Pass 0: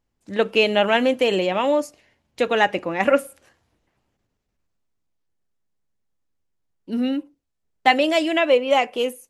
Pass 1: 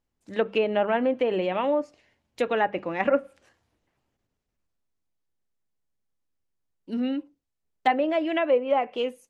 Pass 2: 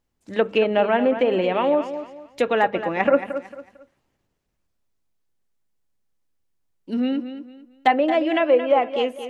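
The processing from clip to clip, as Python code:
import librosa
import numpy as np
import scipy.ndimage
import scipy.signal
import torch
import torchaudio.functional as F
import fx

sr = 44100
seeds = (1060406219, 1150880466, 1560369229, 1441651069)

y1 = fx.env_lowpass_down(x, sr, base_hz=1400.0, full_db=-14.5)
y1 = fx.hum_notches(y1, sr, base_hz=50, count=4)
y1 = y1 * 10.0 ** (-4.5 / 20.0)
y2 = fx.echo_feedback(y1, sr, ms=225, feedback_pct=30, wet_db=-11.0)
y2 = y2 * 10.0 ** (4.5 / 20.0)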